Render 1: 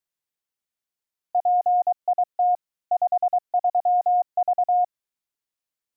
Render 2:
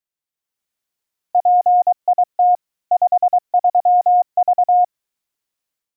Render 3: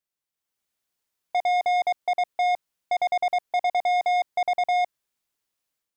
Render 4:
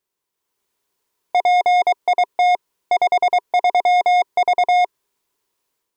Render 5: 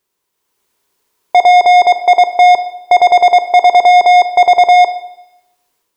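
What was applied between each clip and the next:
AGC gain up to 10 dB; gain -3 dB
soft clip -20.5 dBFS, distortion -10 dB
small resonant body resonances 400/970 Hz, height 11 dB, ringing for 25 ms; gain +6.5 dB
Schroeder reverb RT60 0.85 s, combs from 25 ms, DRR 10.5 dB; gain +8.5 dB

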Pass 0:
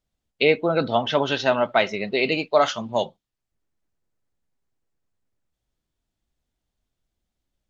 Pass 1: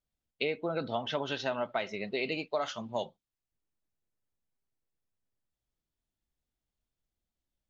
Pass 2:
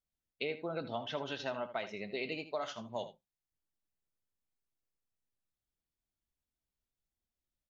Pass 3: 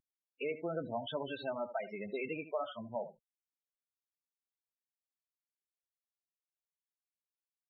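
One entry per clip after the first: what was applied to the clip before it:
compressor 5:1, threshold -19 dBFS, peak gain reduction 7 dB; gain -9 dB
echo 79 ms -13 dB; gain -5.5 dB
CVSD 32 kbps; loudest bins only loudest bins 16; gain +1.5 dB

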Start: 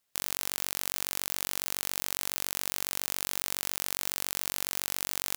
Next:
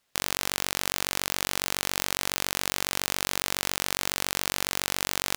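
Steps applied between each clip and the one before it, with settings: high shelf 7600 Hz -11 dB; gain +9 dB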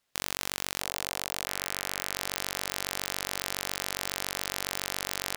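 delay with a stepping band-pass 0.662 s, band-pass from 610 Hz, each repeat 1.4 oct, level -10.5 dB; gain -4.5 dB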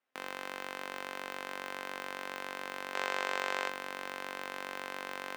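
three-band isolator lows -23 dB, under 200 Hz, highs -18 dB, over 2600 Hz; spectral gain 2.94–3.69, 350–8400 Hz +7 dB; resonator 260 Hz, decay 0.18 s, harmonics all, mix 70%; gain +5 dB

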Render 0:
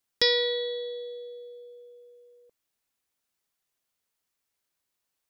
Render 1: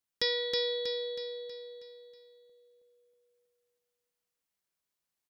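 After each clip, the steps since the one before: bell 180 Hz +4.5 dB 0.38 oct; on a send: feedback echo 0.32 s, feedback 48%, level -3.5 dB; on the sum: gain -7.5 dB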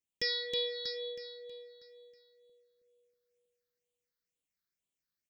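phaser stages 6, 2.1 Hz, lowest notch 700–1500 Hz; dynamic EQ 4900 Hz, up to +4 dB, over -46 dBFS, Q 0.72; gain -2 dB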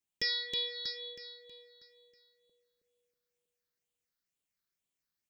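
notch 490 Hz, Q 12; gain +1 dB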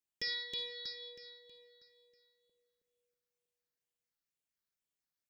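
reverb RT60 0.60 s, pre-delay 47 ms, DRR 10 dB; gain -5.5 dB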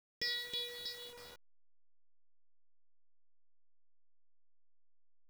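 level-crossing sampler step -47.5 dBFS

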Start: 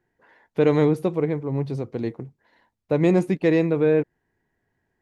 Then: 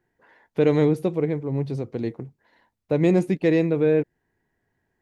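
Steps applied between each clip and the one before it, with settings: dynamic EQ 1100 Hz, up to -5 dB, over -41 dBFS, Q 1.4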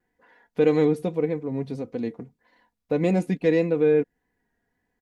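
comb 4.1 ms, depth 56%; vibrato 1.7 Hz 46 cents; gain -2.5 dB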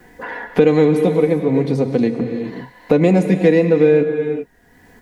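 non-linear reverb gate 0.43 s flat, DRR 8 dB; three-band squash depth 70%; gain +8.5 dB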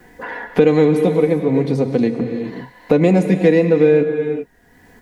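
nothing audible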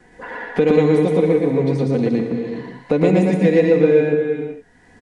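on a send: loudspeakers at several distances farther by 40 m -1 dB, 63 m -9 dB; on the sum: downsampling 22050 Hz; gain -4 dB

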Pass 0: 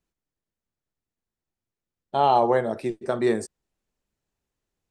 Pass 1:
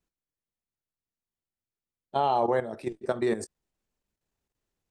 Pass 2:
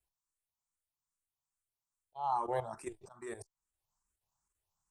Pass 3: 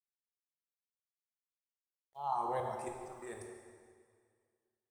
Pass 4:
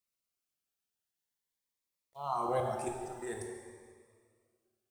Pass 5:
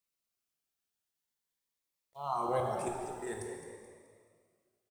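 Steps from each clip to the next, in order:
level quantiser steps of 12 dB
ten-band EQ 250 Hz -12 dB, 500 Hz -9 dB, 1000 Hz +10 dB, 2000 Hz -7 dB, 4000 Hz -5 dB, 8000 Hz +10 dB; auto swell 0.45 s; endless phaser +2.4 Hz
requantised 12-bit, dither none; plate-style reverb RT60 2 s, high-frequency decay 0.9×, DRR 1.5 dB; gain -3 dB
cascading phaser rising 0.46 Hz; gain +7 dB
frequency-shifting echo 0.214 s, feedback 37%, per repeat +55 Hz, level -10.5 dB

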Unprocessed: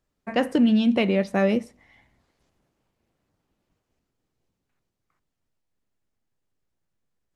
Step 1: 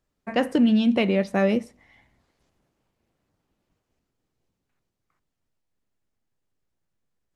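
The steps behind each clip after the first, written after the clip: nothing audible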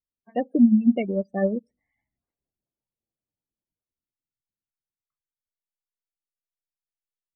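spectral gate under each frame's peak -15 dB strong; upward expander 2.5:1, over -33 dBFS; gain +4.5 dB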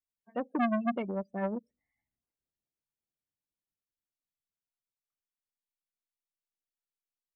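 core saturation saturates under 1000 Hz; gain -7 dB

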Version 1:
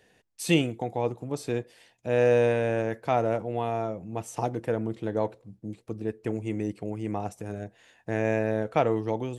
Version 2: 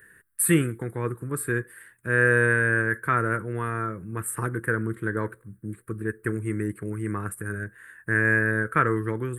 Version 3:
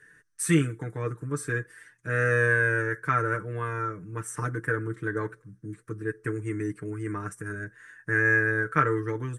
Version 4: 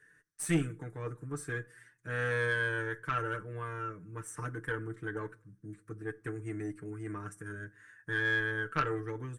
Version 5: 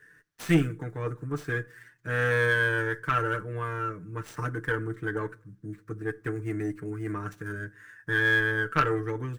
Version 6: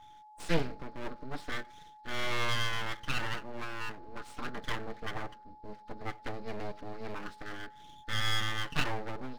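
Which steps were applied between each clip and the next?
EQ curve 140 Hz 0 dB, 260 Hz -6 dB, 380 Hz -1 dB, 760 Hz -23 dB, 1100 Hz +3 dB, 1600 Hz +14 dB, 2600 Hz -11 dB, 6200 Hz -21 dB, 8800 Hz +12 dB; gain +5 dB
synth low-pass 6000 Hz, resonance Q 8.5; comb 6.7 ms, depth 75%; gain -4.5 dB
added harmonics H 4 -17 dB, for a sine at -7 dBFS; on a send at -20 dB: reverb RT60 0.50 s, pre-delay 3 ms; on the sum: gain -7.5 dB
median filter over 5 samples; gain +7 dB
nonlinear frequency compression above 3300 Hz 4:1; full-wave rectifier; whine 850 Hz -48 dBFS; gain -4 dB

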